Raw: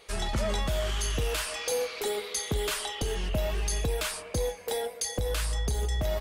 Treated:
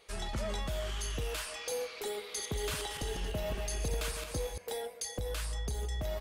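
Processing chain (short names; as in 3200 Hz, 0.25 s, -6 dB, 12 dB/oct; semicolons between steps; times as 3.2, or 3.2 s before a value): 2.17–4.58 regenerating reverse delay 0.115 s, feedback 53%, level -5 dB; gain -7 dB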